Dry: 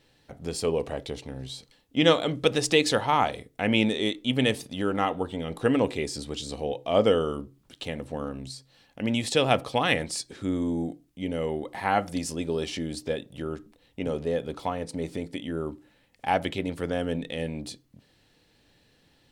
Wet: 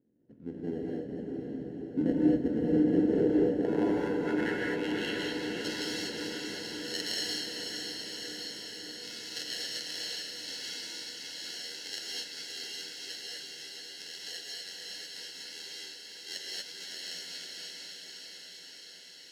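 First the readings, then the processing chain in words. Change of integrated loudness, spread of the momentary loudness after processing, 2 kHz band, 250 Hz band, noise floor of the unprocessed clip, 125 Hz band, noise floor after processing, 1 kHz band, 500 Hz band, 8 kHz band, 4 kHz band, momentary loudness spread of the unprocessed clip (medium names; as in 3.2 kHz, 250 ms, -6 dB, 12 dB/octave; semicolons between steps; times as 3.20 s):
-6.0 dB, 15 LU, -7.0 dB, -2.5 dB, -64 dBFS, -10.0 dB, -50 dBFS, -17.0 dB, -8.0 dB, -3.0 dB, -3.0 dB, 14 LU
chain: sample-rate reducer 1.2 kHz, jitter 0%; high-order bell 840 Hz -9.5 dB 1.2 oct; AM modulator 82 Hz, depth 40%; band-pass sweep 260 Hz -> 4.7 kHz, 2.76–5.35 s; on a send: echo that smears into a reverb 529 ms, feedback 75%, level -4.5 dB; on the sum: gated-style reverb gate 270 ms rising, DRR -3.5 dB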